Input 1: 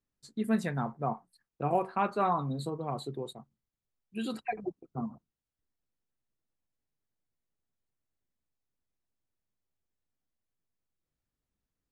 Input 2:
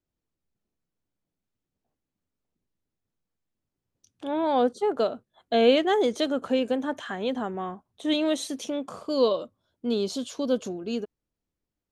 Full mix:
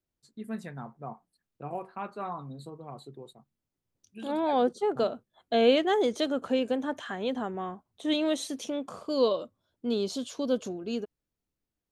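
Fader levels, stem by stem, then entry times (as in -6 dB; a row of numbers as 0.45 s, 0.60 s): -8.0 dB, -2.5 dB; 0.00 s, 0.00 s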